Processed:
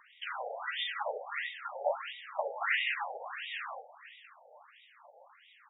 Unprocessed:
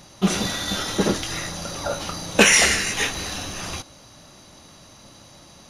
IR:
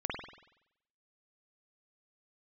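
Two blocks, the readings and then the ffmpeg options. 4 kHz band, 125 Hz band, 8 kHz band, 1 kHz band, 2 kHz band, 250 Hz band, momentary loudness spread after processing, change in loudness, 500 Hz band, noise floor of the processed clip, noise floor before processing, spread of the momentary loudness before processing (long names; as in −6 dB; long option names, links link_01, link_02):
−16.5 dB, below −40 dB, below −40 dB, −7.0 dB, −12.0 dB, below −40 dB, 17 LU, −14.5 dB, −11.5 dB, −61 dBFS, −48 dBFS, 16 LU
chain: -af "bandreject=frequency=62.94:width_type=h:width=4,bandreject=frequency=125.88:width_type=h:width=4,bandreject=frequency=188.82:width_type=h:width=4,bandreject=frequency=251.76:width_type=h:width=4,bandreject=frequency=314.7:width_type=h:width=4,bandreject=frequency=377.64:width_type=h:width=4,bandreject=frequency=440.58:width_type=h:width=4,bandreject=frequency=503.52:width_type=h:width=4,bandreject=frequency=566.46:width_type=h:width=4,bandreject=frequency=629.4:width_type=h:width=4,alimiter=limit=-10.5dB:level=0:latency=1:release=444,flanger=delay=4.2:depth=4.9:regen=55:speed=0.93:shape=triangular,aecho=1:1:512|1024|1536:0.15|0.0419|0.0117,afftfilt=real='re*between(b*sr/1024,600*pow(2700/600,0.5+0.5*sin(2*PI*1.5*pts/sr))/1.41,600*pow(2700/600,0.5+0.5*sin(2*PI*1.5*pts/sr))*1.41)':imag='im*between(b*sr/1024,600*pow(2700/600,0.5+0.5*sin(2*PI*1.5*pts/sr))/1.41,600*pow(2700/600,0.5+0.5*sin(2*PI*1.5*pts/sr))*1.41)':win_size=1024:overlap=0.75,volume=3dB"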